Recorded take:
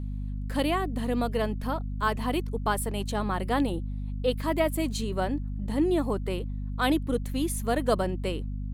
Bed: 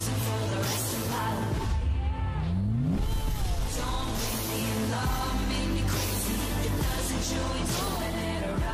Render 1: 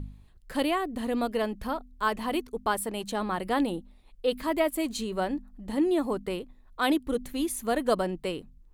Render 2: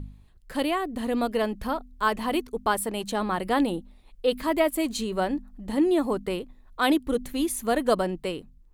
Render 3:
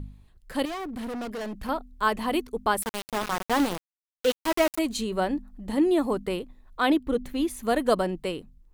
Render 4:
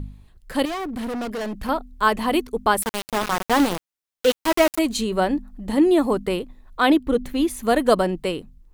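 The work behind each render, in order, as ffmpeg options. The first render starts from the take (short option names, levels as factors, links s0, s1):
-af "bandreject=f=50:t=h:w=4,bandreject=f=100:t=h:w=4,bandreject=f=150:t=h:w=4,bandreject=f=200:t=h:w=4,bandreject=f=250:t=h:w=4"
-af "dynaudnorm=f=370:g=5:m=1.41"
-filter_complex "[0:a]asettb=1/sr,asplit=3[s0][s1][s2];[s0]atrim=end=0.654[s3];[s1]atrim=start=0.65:end=1.69,asetpts=PTS-STARTPTS,afade=t=in:d=0.004:c=qsin,afade=t=out:st=1.036:d=0.004:c=qsin,asoftclip=type=hard:threshold=0.0266[s4];[s2]atrim=start=1.686[s5];[s3][s4]acrossfade=d=0.004:c1=hsin:c2=qsin[s6];[s6][s5]acrossfade=d=0.004:c1=qsin:c2=hsin,asettb=1/sr,asplit=3[s7][s8][s9];[s7]atrim=end=2.824[s10];[s8]atrim=start=2.82:end=4.79,asetpts=PTS-STARTPTS,afade=t=in:d=0.004:c=qsin,afade=t=out:st=1.966:d=0.004:c=qsin,aeval=exprs='val(0)*gte(abs(val(0)),0.0596)':c=same[s11];[s9]atrim=start=4.786[s12];[s10][s11]acrossfade=d=0.004:c1=hsin:c2=qsin[s13];[s13][s12]acrossfade=d=0.004:c1=qsin:c2=hsin,asettb=1/sr,asplit=3[s14][s15][s16];[s14]atrim=end=6.824[s17];[s15]atrim=start=6.82:end=7.63,asetpts=PTS-STARTPTS,afade=t=in:d=0.004:c=qsin,afade=t=out:st=0.806:d=0.004:c=qsin,equalizer=f=11000:t=o:w=1.8:g=-9[s18];[s16]atrim=start=7.626[s19];[s17][s18]acrossfade=d=0.004:c1=hsin:c2=qsin[s20];[s20][s19]acrossfade=d=0.004:c1=qsin:c2=hsin"
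-af "volume=1.88"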